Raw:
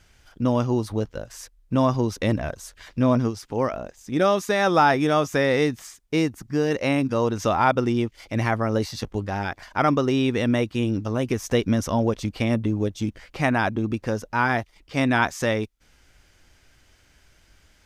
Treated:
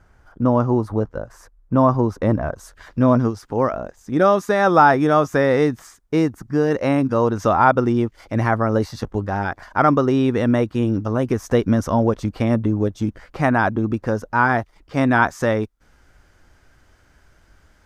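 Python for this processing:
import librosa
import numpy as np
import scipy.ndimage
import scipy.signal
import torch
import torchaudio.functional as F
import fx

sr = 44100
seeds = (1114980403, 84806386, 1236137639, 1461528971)

y = fx.high_shelf_res(x, sr, hz=1900.0, db=fx.steps((0.0, -13.5), (2.56, -7.0)), q=1.5)
y = y * 10.0 ** (4.0 / 20.0)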